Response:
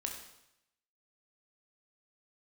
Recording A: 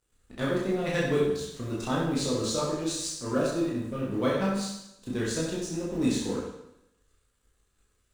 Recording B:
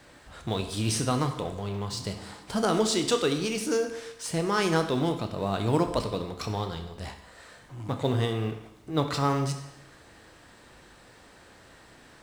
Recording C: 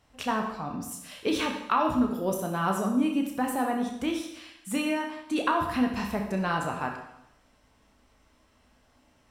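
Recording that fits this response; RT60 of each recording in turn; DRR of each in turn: C; 0.80 s, 0.80 s, 0.80 s; -6.0 dB, 6.0 dB, 1.5 dB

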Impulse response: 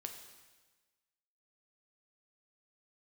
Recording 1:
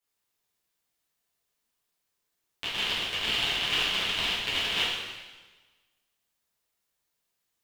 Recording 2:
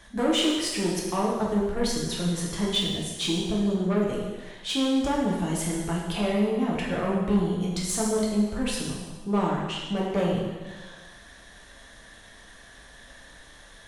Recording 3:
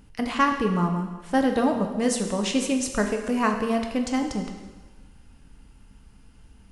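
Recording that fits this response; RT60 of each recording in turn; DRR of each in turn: 3; 1.3 s, 1.3 s, 1.3 s; -9.0 dB, -4.5 dB, 3.5 dB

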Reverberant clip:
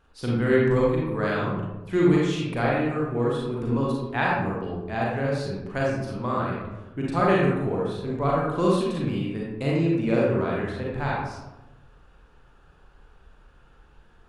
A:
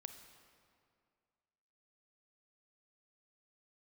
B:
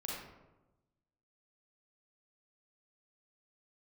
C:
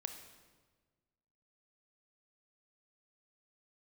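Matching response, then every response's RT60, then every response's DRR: B; 2.2 s, 1.1 s, 1.4 s; 7.0 dB, -4.5 dB, 6.5 dB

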